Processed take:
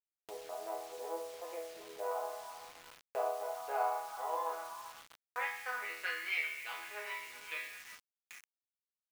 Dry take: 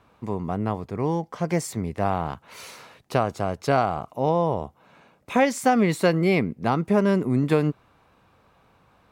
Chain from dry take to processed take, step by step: local Wiener filter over 41 samples; steep high-pass 350 Hz 36 dB/octave; treble shelf 2.8 kHz +7 dB; chord resonator E3 major, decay 0.72 s; in parallel at -1 dB: compression 8:1, threshold -56 dBFS, peak gain reduction 20 dB; on the sum: repeats whose band climbs or falls 389 ms, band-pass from 1.1 kHz, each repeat 0.7 oct, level -9 dB; band-pass sweep 650 Hz -> 2.3 kHz, 3.23–6.59 s; gate with hold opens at -59 dBFS; bit crusher 11-bit; tilt shelf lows -4 dB, about 800 Hz; upward compressor, threshold -59 dBFS; trim +11.5 dB

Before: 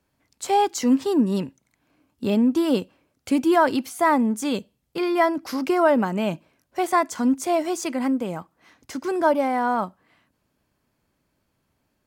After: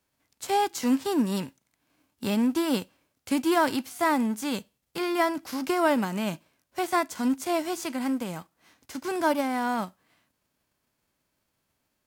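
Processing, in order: formants flattened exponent 0.6; trim -5 dB

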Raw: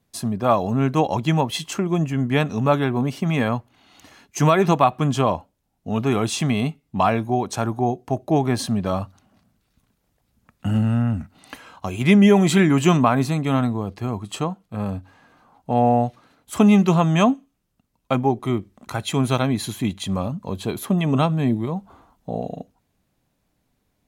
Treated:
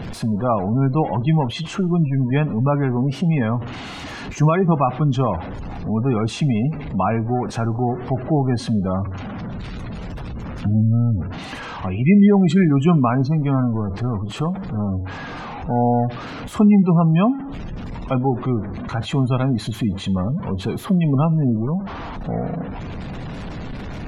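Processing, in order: jump at every zero crossing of -22.5 dBFS; treble shelf 7.3 kHz -11 dB; spectral gate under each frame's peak -25 dB strong; tone controls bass +5 dB, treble -4 dB; two-slope reverb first 0.33 s, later 1.6 s, from -20 dB, DRR 17.5 dB; trim -3.5 dB

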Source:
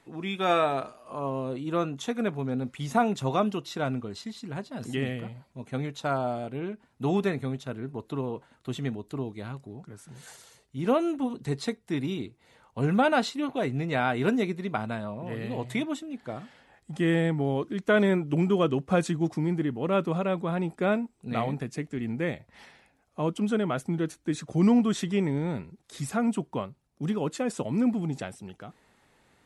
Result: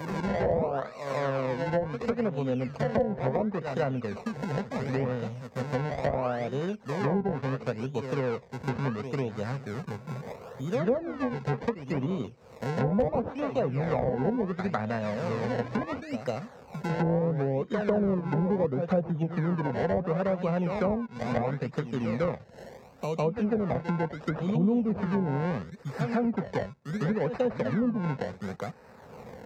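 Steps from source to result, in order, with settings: level-controlled noise filter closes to 1.4 kHz, open at -24 dBFS; decimation with a swept rate 25×, swing 100% 0.72 Hz; reverse echo 151 ms -10.5 dB; low-pass that closes with the level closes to 630 Hz, closed at -21 dBFS; high-pass 59 Hz 12 dB/octave; wow and flutter 22 cents; graphic EQ with 31 bands 315 Hz -12 dB, 500 Hz +7 dB, 3.15 kHz -7 dB, 10 kHz -11 dB; hard clipper -13 dBFS, distortion -43 dB; three bands compressed up and down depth 70%

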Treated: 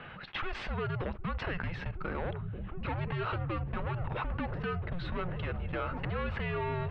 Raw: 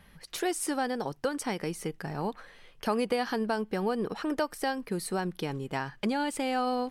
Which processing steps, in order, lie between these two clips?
saturation -32.5 dBFS, distortion -8 dB; gate -42 dBFS, range -20 dB; delay with an opening low-pass 763 ms, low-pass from 200 Hz, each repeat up 1 oct, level -6 dB; mistuned SSB -350 Hz 220–3500 Hz; dynamic bell 1.4 kHz, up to +4 dB, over -52 dBFS, Q 0.79; level flattener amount 70%

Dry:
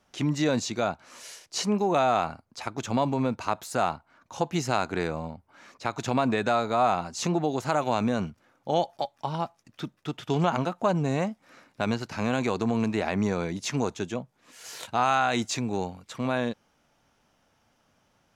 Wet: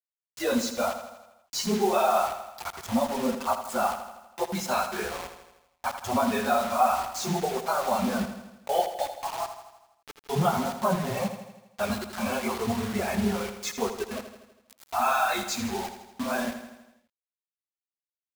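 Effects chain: phase randomisation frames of 50 ms; spectral noise reduction 27 dB; word length cut 6-bit, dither none; feedback delay 81 ms, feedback 58%, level -10 dB

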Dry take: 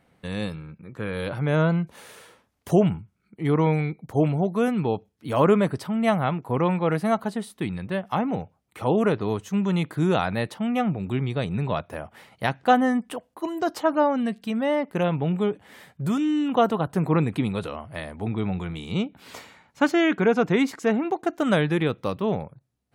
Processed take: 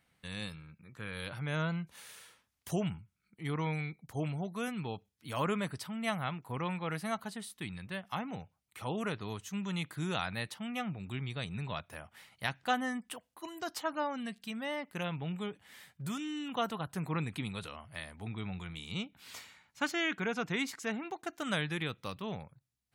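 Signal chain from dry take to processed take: amplifier tone stack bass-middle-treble 5-5-5; trim +3.5 dB

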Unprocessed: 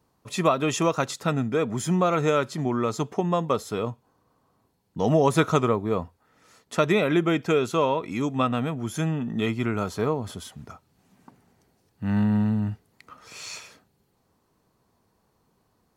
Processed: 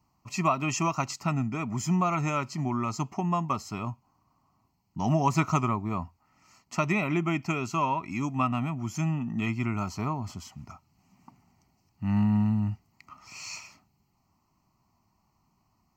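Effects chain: static phaser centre 2.4 kHz, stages 8

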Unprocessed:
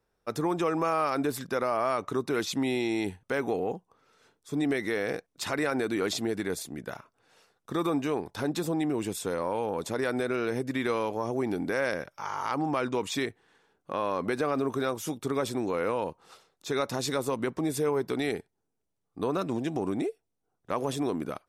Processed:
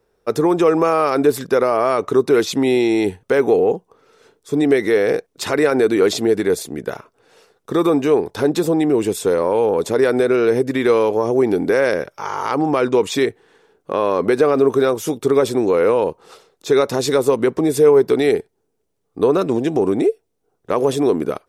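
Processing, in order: peaking EQ 430 Hz +9 dB 0.67 oct; trim +8.5 dB

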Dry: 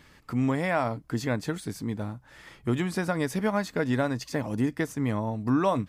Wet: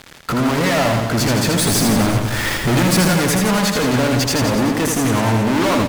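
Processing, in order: fuzz box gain 44 dB, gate -51 dBFS; 1.59–3.10 s: power-law waveshaper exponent 0.35; reverse bouncing-ball echo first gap 80 ms, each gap 1.1×, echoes 5; trim -4 dB

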